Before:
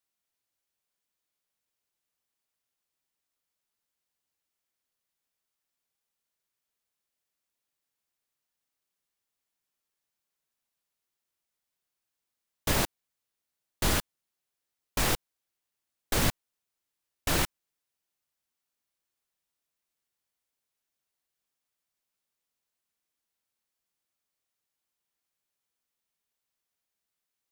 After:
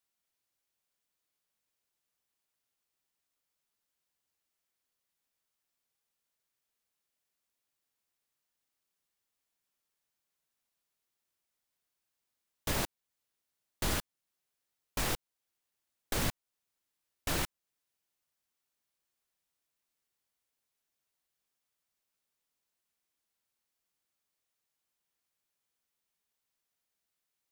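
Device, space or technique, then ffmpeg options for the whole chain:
clipper into limiter: -af "asoftclip=type=hard:threshold=-15dB,alimiter=limit=-21.5dB:level=0:latency=1:release=381"

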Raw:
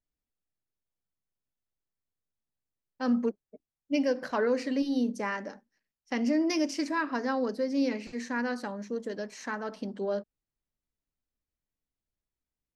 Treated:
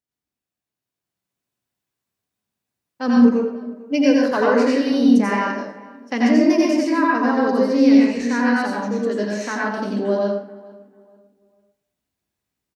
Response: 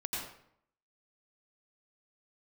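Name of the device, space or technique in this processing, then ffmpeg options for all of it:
far laptop microphone: -filter_complex "[0:a]asettb=1/sr,asplit=3[a][b][c];[a]atrim=end=6.474[d];[b]atrim=start=6.47:end=7.38,asetpts=PTS-STARTPTS,afade=t=in:d=0.004:c=qsin,afade=t=out:st=0.906:d=0.004:c=qsin,equalizer=f=5.1k:w=0.5:g=-7[e];[c]atrim=start=7.376[f];[d][e]acrossfade=d=0.004:c1=hsin:c2=qsin[g];[g][f]acrossfade=d=0.004:c1=qsin:c2=hsin,asplit=2[h][i];[i]adelay=445,lowpass=f=1.9k:p=1,volume=-20.5dB,asplit=2[j][k];[k]adelay=445,lowpass=f=1.9k:p=1,volume=0.33,asplit=2[l][m];[m]adelay=445,lowpass=f=1.9k:p=1,volume=0.33[n];[h][j][l][n]amix=inputs=4:normalize=0[o];[1:a]atrim=start_sample=2205[p];[o][p]afir=irnorm=-1:irlink=0,highpass=100,dynaudnorm=f=170:g=13:m=7dB,volume=2.5dB"

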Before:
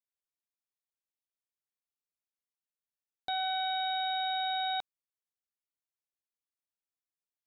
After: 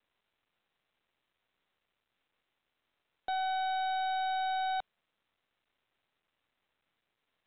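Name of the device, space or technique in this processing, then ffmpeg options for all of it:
telephone: -af "highpass=310,lowpass=3.2k,asoftclip=type=tanh:threshold=-33.5dB,volume=5dB" -ar 8000 -c:a pcm_mulaw

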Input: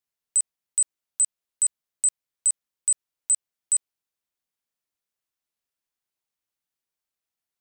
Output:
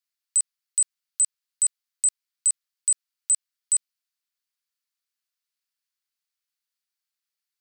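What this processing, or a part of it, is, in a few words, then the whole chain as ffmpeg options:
headphones lying on a table: -af "highpass=f=1.2k:w=0.5412,highpass=f=1.2k:w=1.3066,equalizer=f=4.6k:t=o:w=0.44:g=5.5"

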